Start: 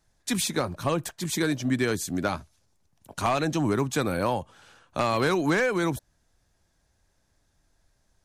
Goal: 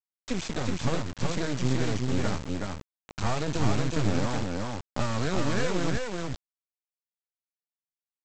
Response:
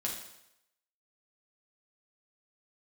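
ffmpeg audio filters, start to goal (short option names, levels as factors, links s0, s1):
-filter_complex "[0:a]aemphasis=mode=reproduction:type=bsi,acrossover=split=120|3000[s0][s1][s2];[s1]acompressor=threshold=0.0708:ratio=8[s3];[s0][s3][s2]amix=inputs=3:normalize=0,aresample=16000,acrusher=bits=3:dc=4:mix=0:aa=0.000001,aresample=44100,aecho=1:1:373:0.708"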